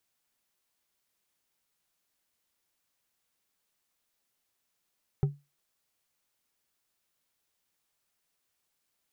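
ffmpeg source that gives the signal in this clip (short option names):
-f lavfi -i "aevalsrc='0.119*pow(10,-3*t/0.24)*sin(2*PI*143*t)+0.0376*pow(10,-3*t/0.118)*sin(2*PI*394.3*t)+0.0119*pow(10,-3*t/0.074)*sin(2*PI*772.8*t)+0.00376*pow(10,-3*t/0.052)*sin(2*PI*1277.4*t)+0.00119*pow(10,-3*t/0.039)*sin(2*PI*1907.6*t)':d=0.89:s=44100"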